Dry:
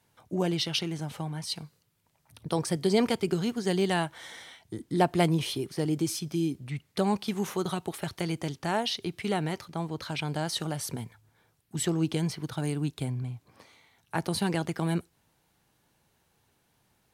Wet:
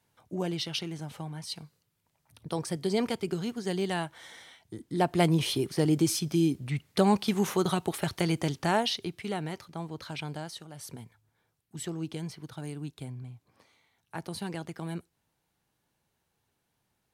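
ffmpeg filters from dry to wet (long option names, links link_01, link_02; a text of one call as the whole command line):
ffmpeg -i in.wav -af "volume=12dB,afade=type=in:start_time=4.92:duration=0.69:silence=0.421697,afade=type=out:start_time=8.64:duration=0.57:silence=0.398107,afade=type=out:start_time=10.25:duration=0.43:silence=0.251189,afade=type=in:start_time=10.68:duration=0.16:silence=0.375837" out.wav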